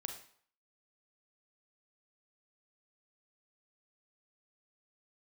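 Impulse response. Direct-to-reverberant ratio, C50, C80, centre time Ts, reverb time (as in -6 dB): 4.5 dB, 7.0 dB, 11.0 dB, 20 ms, 0.55 s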